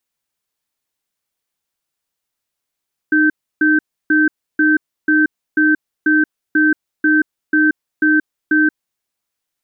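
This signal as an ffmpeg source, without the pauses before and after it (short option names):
-f lavfi -i "aevalsrc='0.237*(sin(2*PI*307*t)+sin(2*PI*1550*t))*clip(min(mod(t,0.49),0.18-mod(t,0.49))/0.005,0,1)':d=5.82:s=44100"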